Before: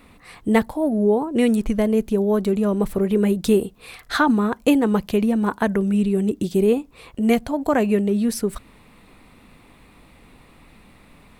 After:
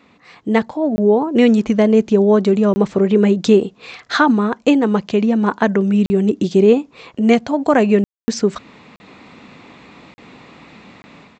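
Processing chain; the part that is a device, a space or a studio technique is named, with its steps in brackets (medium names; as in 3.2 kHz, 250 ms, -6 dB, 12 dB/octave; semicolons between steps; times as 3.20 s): call with lost packets (high-pass 150 Hz 12 dB/octave; resampled via 16 kHz; level rider gain up to 10 dB; lost packets of 20 ms bursts)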